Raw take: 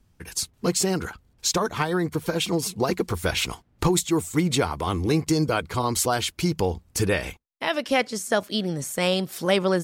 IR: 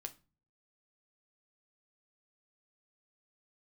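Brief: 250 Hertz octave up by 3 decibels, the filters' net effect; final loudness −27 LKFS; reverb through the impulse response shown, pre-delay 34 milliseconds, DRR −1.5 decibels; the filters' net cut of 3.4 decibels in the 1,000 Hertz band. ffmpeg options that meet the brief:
-filter_complex "[0:a]equalizer=frequency=250:width_type=o:gain=5,equalizer=frequency=1000:width_type=o:gain=-5,asplit=2[link_01][link_02];[1:a]atrim=start_sample=2205,adelay=34[link_03];[link_02][link_03]afir=irnorm=-1:irlink=0,volume=5dB[link_04];[link_01][link_04]amix=inputs=2:normalize=0,volume=-6.5dB"

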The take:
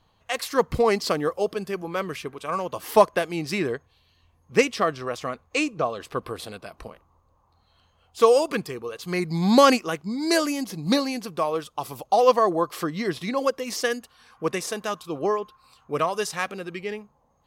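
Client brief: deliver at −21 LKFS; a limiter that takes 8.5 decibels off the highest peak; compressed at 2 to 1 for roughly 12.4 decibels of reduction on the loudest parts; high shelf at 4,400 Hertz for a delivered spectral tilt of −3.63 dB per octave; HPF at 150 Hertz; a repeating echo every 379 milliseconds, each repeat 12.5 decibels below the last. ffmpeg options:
ffmpeg -i in.wav -af "highpass=150,highshelf=frequency=4400:gain=6,acompressor=threshold=-34dB:ratio=2,alimiter=limit=-22dB:level=0:latency=1,aecho=1:1:379|758|1137:0.237|0.0569|0.0137,volume=13.5dB" out.wav

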